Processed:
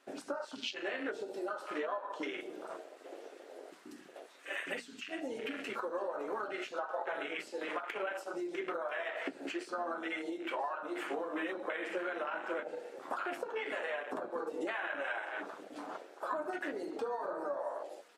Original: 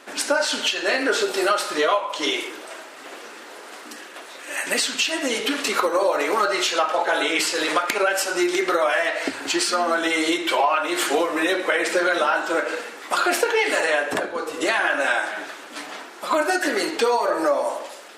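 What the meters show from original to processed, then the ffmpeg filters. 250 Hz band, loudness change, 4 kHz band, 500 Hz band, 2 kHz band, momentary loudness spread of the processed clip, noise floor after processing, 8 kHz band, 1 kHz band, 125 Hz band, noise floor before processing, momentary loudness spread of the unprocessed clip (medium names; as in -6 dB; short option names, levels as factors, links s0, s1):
-15.0 dB, -17.5 dB, -22.5 dB, -16.0 dB, -17.5 dB, 9 LU, -55 dBFS, -29.5 dB, -17.0 dB, no reading, -41 dBFS, 15 LU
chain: -filter_complex "[0:a]acompressor=threshold=0.0316:ratio=8,asplit=2[s0][s1];[s1]aecho=0:1:990:0.126[s2];[s0][s2]amix=inputs=2:normalize=0,afwtdn=0.0224,flanger=delay=7.5:depth=3.8:regen=-54:speed=0.15:shape=sinusoidal,bandreject=f=60:t=h:w=6,bandreject=f=120:t=h:w=6,bandreject=f=180:t=h:w=6,bandreject=f=240:t=h:w=6"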